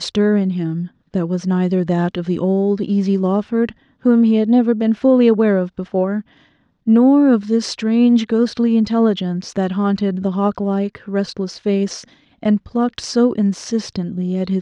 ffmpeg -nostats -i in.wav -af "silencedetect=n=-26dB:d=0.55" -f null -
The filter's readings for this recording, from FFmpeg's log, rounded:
silence_start: 6.21
silence_end: 6.87 | silence_duration: 0.67